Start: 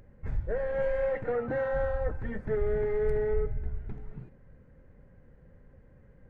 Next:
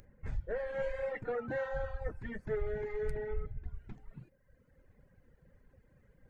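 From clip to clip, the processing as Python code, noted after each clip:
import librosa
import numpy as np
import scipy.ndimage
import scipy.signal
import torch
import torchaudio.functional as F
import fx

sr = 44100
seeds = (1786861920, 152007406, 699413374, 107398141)

y = fx.dereverb_blind(x, sr, rt60_s=1.4)
y = fx.high_shelf(y, sr, hz=2500.0, db=11.5)
y = y * librosa.db_to_amplitude(-5.0)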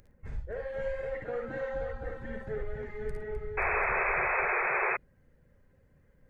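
y = fx.echo_multitap(x, sr, ms=(56, 69, 110, 256, 529, 741), db=(-5.0, -9.5, -18.5, -10.5, -7.0, -9.5))
y = fx.spec_paint(y, sr, seeds[0], shape='noise', start_s=3.57, length_s=1.4, low_hz=360.0, high_hz=2600.0, level_db=-27.0)
y = y * librosa.db_to_amplitude(-2.0)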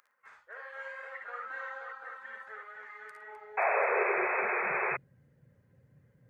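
y = fx.filter_sweep_highpass(x, sr, from_hz=1200.0, to_hz=120.0, start_s=3.16, end_s=5.04, q=3.6)
y = y * librosa.db_to_amplitude(-2.5)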